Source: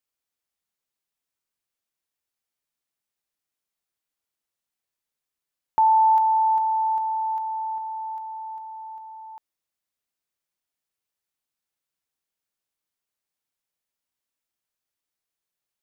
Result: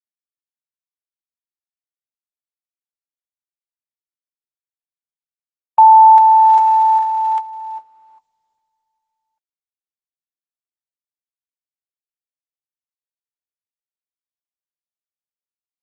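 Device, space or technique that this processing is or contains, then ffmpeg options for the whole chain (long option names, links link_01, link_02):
video call: -af "highpass=160,dynaudnorm=framelen=790:gausssize=3:maxgain=14dB,agate=range=-50dB:threshold=-15dB:ratio=16:detection=peak" -ar 48000 -c:a libopus -b:a 12k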